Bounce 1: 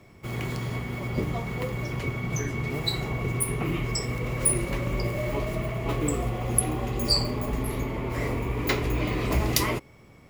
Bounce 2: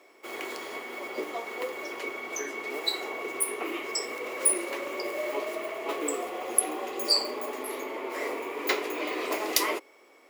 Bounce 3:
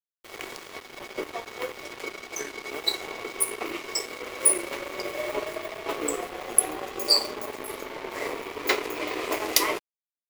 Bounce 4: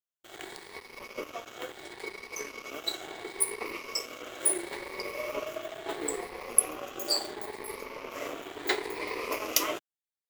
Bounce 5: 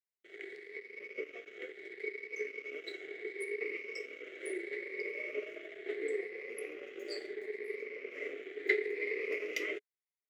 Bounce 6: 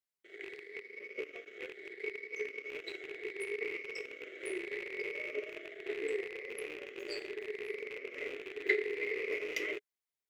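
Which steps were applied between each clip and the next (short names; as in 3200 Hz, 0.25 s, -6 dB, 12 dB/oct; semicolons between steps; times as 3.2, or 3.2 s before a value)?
inverse Chebyshev high-pass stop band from 170 Hz, stop band 40 dB
crossover distortion -38 dBFS; gain +4.5 dB
moving spectral ripple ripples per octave 0.88, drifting +0.73 Hz, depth 8 dB; gain -5.5 dB
double band-pass 930 Hz, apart 2.3 oct; gain +4 dB
rattling part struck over -57 dBFS, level -34 dBFS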